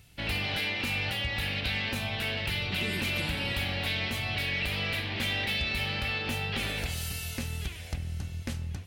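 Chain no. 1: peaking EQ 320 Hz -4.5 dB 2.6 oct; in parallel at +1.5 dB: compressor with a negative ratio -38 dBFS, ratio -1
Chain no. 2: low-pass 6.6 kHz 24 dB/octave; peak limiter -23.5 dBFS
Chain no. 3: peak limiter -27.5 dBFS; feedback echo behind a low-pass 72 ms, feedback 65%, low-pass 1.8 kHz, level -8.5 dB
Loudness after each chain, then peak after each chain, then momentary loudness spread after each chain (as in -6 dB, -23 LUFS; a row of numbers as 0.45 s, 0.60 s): -27.0 LUFS, -32.0 LUFS, -34.5 LUFS; -16.0 dBFS, -23.5 dBFS, -24.5 dBFS; 5 LU, 6 LU, 3 LU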